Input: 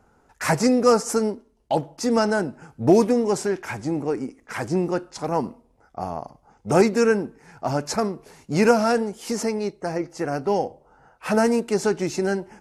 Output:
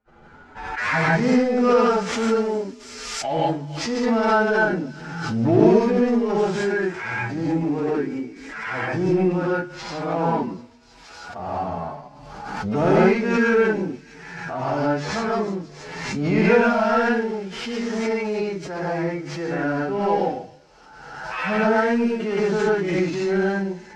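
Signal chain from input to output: CVSD 64 kbps; notches 50/100/150 Hz; gate -55 dBFS, range -54 dB; EQ curve 310 Hz 0 dB, 710 Hz -1 dB, 2200 Hz +5 dB, 6100 Hz -2 dB; time stretch by phase-locked vocoder 1.9×; in parallel at -8.5 dB: hard clip -21 dBFS, distortion -7 dB; on the sum: air absorption 160 m; on a send: thin delay 0.314 s, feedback 74%, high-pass 4900 Hz, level -10.5 dB; on the sum: non-linear reverb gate 0.19 s rising, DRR -6.5 dB; backwards sustainer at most 39 dB/s; gain -7 dB

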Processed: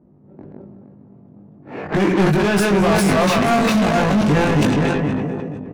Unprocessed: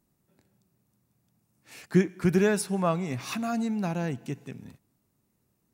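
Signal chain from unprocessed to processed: regenerating reverse delay 0.234 s, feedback 42%, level 0 dB; low shelf 380 Hz +10.5 dB; compressor 8:1, threshold -20 dBFS, peak gain reduction 14.5 dB; sample leveller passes 1; low-pass opened by the level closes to 520 Hz, open at -20.5 dBFS; on a send: feedback echo 0.222 s, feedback 34%, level -20.5 dB; on the sum: overdrive pedal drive 32 dB, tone 2900 Hz, clips at -11.5 dBFS; doubler 20 ms -3 dB; sustainer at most 21 dB/s

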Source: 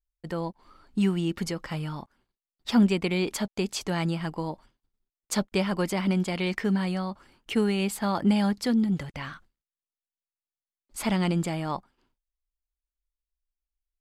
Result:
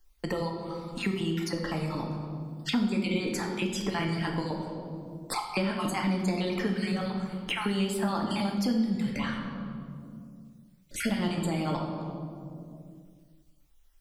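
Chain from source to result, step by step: random spectral dropouts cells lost 38%; compressor 2:1, threshold -30 dBFS, peak gain reduction 8 dB; reverb RT60 1.5 s, pre-delay 4 ms, DRR 0.5 dB; three-band squash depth 70%

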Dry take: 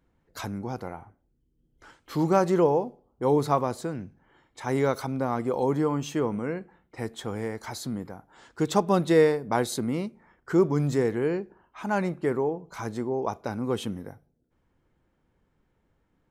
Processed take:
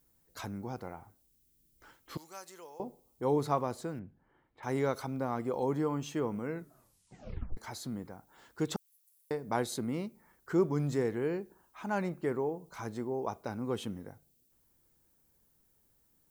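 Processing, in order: 2.17–2.8 differentiator; 8.76–9.31 inverse Chebyshev high-pass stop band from 2800 Hz, stop band 80 dB; added noise violet -65 dBFS; 3.99–4.63 air absorption 470 m; 6.49 tape stop 1.08 s; gain -6.5 dB

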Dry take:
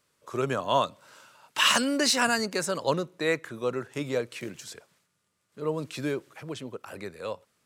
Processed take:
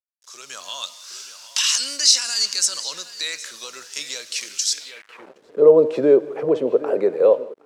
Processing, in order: in parallel at +0.5 dB: compressor 5:1, threshold -37 dBFS, peak gain reduction 17 dB; on the sum: limiter -18 dBFS, peak gain reduction 11 dB; HPF 120 Hz 24 dB/oct; high shelf 2400 Hz +6 dB; de-hum 307.8 Hz, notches 34; tape echo 0.767 s, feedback 23%, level -14 dB, low-pass 4400 Hz; on a send at -17.5 dB: reverb, pre-delay 3 ms; on the sum: requantised 8-bit, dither none; AGC gain up to 11.5 dB; band-pass sweep 5500 Hz -> 450 Hz, 4.76–5.39; dynamic EQ 630 Hz, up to +6 dB, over -35 dBFS, Q 1.1; gain +3.5 dB

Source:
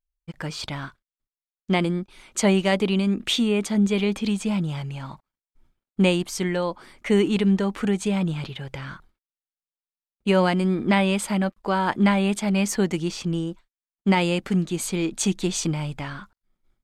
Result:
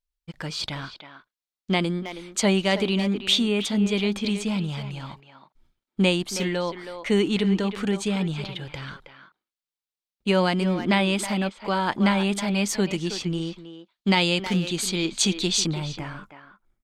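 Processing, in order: bell 4000 Hz +6.5 dB 1.1 oct, from 13.41 s +13 dB, from 15.66 s -5 dB; speakerphone echo 0.32 s, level -9 dB; gain -2 dB

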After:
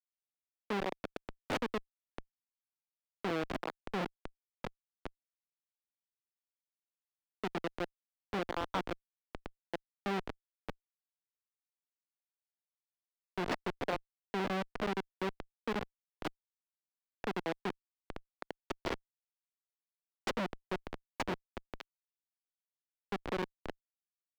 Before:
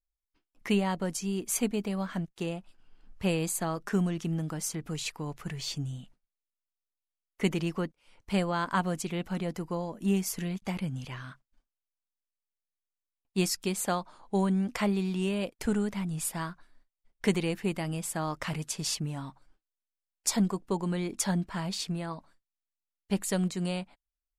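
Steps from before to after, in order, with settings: Schmitt trigger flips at -24 dBFS; three-band isolator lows -16 dB, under 250 Hz, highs -19 dB, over 4200 Hz; gain +4.5 dB

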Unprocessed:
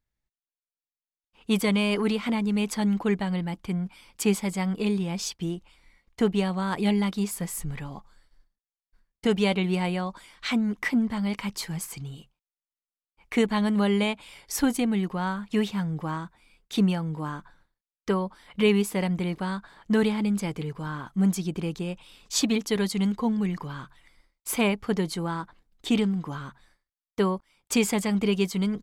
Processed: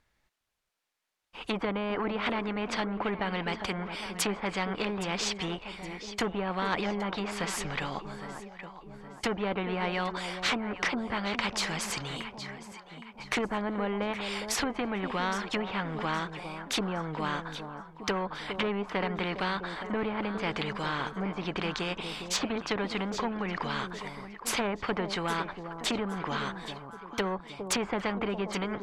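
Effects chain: treble ducked by the level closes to 670 Hz, closed at -20 dBFS; overdrive pedal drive 11 dB, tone 2400 Hz, clips at -12.5 dBFS; echo with dull and thin repeats by turns 0.408 s, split 820 Hz, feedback 58%, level -14 dB; spectral compressor 2:1

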